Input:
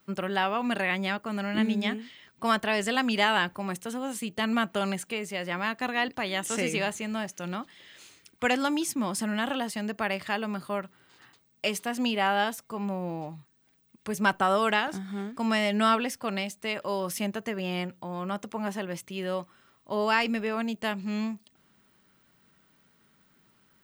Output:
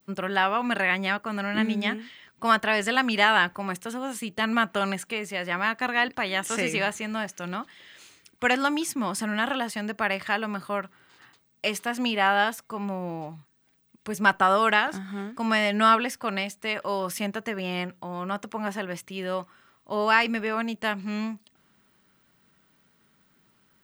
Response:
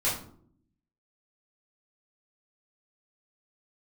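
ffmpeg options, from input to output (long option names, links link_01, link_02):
-af "adynamicequalizer=threshold=0.01:dfrequency=1500:dqfactor=0.78:tfrequency=1500:tqfactor=0.78:attack=5:release=100:ratio=0.375:range=3:mode=boostabove:tftype=bell"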